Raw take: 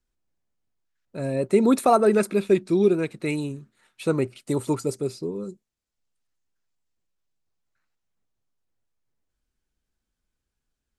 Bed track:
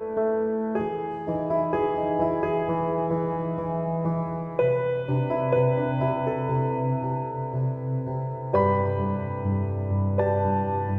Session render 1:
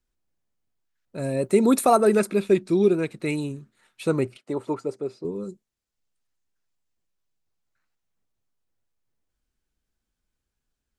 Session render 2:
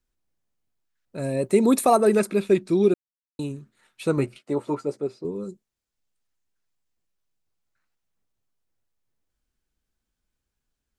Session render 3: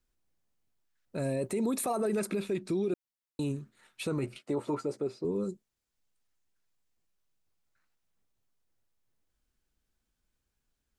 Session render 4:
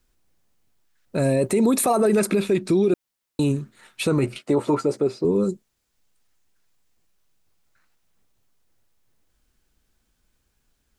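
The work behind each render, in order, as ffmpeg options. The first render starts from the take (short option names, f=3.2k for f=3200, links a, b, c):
-filter_complex "[0:a]asettb=1/sr,asplit=3[a][b][c];[a]atrim=end=1.184[d];[b]atrim=start=1.18:end=2.2,asetpts=PTS-STARTPTS,afade=t=in:d=0.004:c=qsin,afade=t=out:st=1.016:d=0.004:c=qsin,highshelf=f=9k:g=11.5[e];[c]atrim=start=2.196[f];[d][e]acrossfade=d=0.004:c1=hsin:c2=qsin[g];[g][f]acrossfade=d=0.004:c1=qsin:c2=hsin,asettb=1/sr,asplit=3[h][i][j];[h]atrim=end=4.374[k];[i]atrim=start=4.37:end=5.25,asetpts=PTS-STARTPTS,afade=t=in:d=0.004:c=qsin,afade=t=out:st=0.876:d=0.004:c=qsin,bandpass=f=760:t=q:w=0.57[l];[j]atrim=start=5.246[m];[k][l]acrossfade=d=0.004:c1=hsin:c2=qsin[n];[n][m]acrossfade=d=0.004:c1=qsin:c2=hsin"
-filter_complex "[0:a]asettb=1/sr,asplit=3[a][b][c];[a]atrim=end=1.264[d];[b]atrim=start=1.26:end=2.23,asetpts=PTS-STARTPTS,afade=t=in:d=0.004:c=qsin,afade=t=out:st=0.966:d=0.004:c=qsin,bandreject=f=1.4k:w=9[e];[c]atrim=start=2.226[f];[d][e]acrossfade=d=0.004:c1=hsin:c2=qsin[g];[g][f]acrossfade=d=0.004:c1=qsin:c2=hsin,asettb=1/sr,asplit=3[h][i][j];[h]atrim=end=4.164[k];[i]atrim=start=4.16:end=5.07,asetpts=PTS-STARTPTS,afade=t=in:d=0.004:c=qsin,afade=t=out:st=0.906:d=0.004:c=qsin,asplit=2[l][m];[m]adelay=14,volume=-6dB[n];[l][n]amix=inputs=2:normalize=0,atrim=end_sample=40131[o];[j]atrim=start=5.066[p];[k][o]acrossfade=d=0.004:c1=hsin:c2=qsin[q];[q][p]acrossfade=d=0.004:c1=qsin:c2=hsin,asplit=3[r][s][t];[r]atrim=end=2.94,asetpts=PTS-STARTPTS,afade=t=out:st=2.936:d=0.004:c=hsin[u];[s]atrim=start=2.94:end=3.39,asetpts=PTS-STARTPTS,volume=0[v];[t]atrim=start=3.39,asetpts=PTS-STARTPTS,afade=t=in:d=0.004:c=hsin[w];[u][v][w]concat=n=3:v=0:a=1"
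-af "acompressor=threshold=-21dB:ratio=4,alimiter=limit=-23.5dB:level=0:latency=1:release=25"
-af "volume=11.5dB"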